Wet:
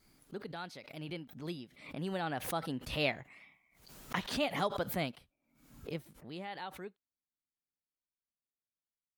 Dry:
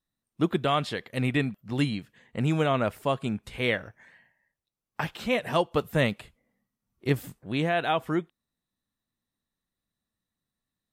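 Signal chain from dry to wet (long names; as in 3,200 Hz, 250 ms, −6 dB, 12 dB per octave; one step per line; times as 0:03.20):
source passing by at 0:04.35, 6 m/s, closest 2.7 metres
speed change +19%
background raised ahead of every attack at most 91 dB per second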